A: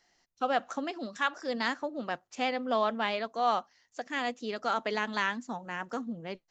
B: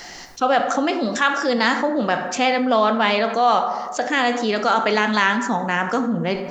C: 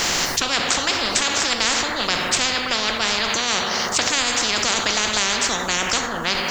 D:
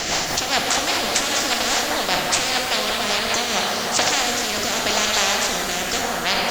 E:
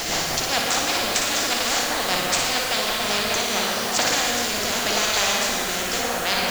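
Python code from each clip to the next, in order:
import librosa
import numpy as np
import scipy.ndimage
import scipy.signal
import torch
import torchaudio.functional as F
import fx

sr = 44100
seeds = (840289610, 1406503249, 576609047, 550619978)

y1 = fx.rev_plate(x, sr, seeds[0], rt60_s=0.9, hf_ratio=0.5, predelay_ms=0, drr_db=8.5)
y1 = fx.env_flatten(y1, sr, amount_pct=50)
y1 = y1 * librosa.db_to_amplitude(8.5)
y2 = fx.spectral_comp(y1, sr, ratio=10.0)
y3 = fx.rotary_switch(y2, sr, hz=5.0, then_hz=0.85, switch_at_s=3.21)
y3 = fx.peak_eq(y3, sr, hz=710.0, db=7.5, octaves=0.52)
y3 = fx.rev_shimmer(y3, sr, seeds[1], rt60_s=3.3, semitones=12, shimmer_db=-8, drr_db=3.5)
y4 = fx.dmg_noise_colour(y3, sr, seeds[2], colour='white', level_db=-34.0)
y4 = fx.room_flutter(y4, sr, wall_m=10.0, rt60_s=0.6)
y4 = y4 * librosa.db_to_amplitude(-3.0)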